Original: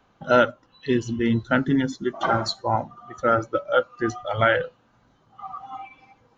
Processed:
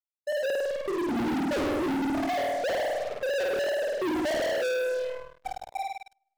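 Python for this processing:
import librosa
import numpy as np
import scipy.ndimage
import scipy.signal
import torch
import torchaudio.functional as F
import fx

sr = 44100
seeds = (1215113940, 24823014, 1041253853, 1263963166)

y = fx.sine_speech(x, sr)
y = scipy.signal.sosfilt(scipy.signal.butter(12, 680.0, 'lowpass', fs=sr, output='sos'), y)
y = fx.over_compress(y, sr, threshold_db=-26.0, ratio=-0.5)
y = fx.backlash(y, sr, play_db=-32.0)
y = fx.doubler(y, sr, ms=26.0, db=-9.5)
y = fx.room_flutter(y, sr, wall_m=8.8, rt60_s=1.1)
y = fx.leveller(y, sr, passes=5)
y = 10.0 ** (-22.0 / 20.0) * np.tanh(y / 10.0 ** (-22.0 / 20.0))
y = y * librosa.db_to_amplitude(-4.5)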